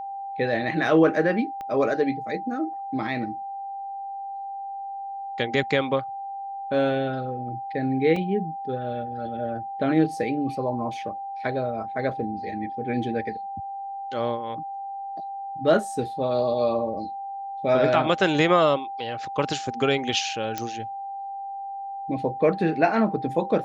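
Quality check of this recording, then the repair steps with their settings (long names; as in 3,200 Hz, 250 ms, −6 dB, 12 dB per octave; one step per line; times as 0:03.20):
whistle 790 Hz −31 dBFS
0:01.61: click −23 dBFS
0:08.16: drop-out 3.3 ms
0:20.58: click −13 dBFS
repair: click removal
notch filter 790 Hz, Q 30
repair the gap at 0:08.16, 3.3 ms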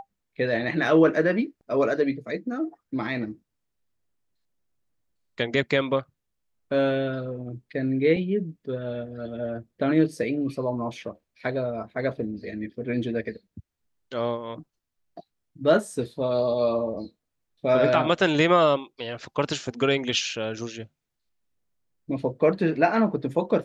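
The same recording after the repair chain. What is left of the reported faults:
0:01.61: click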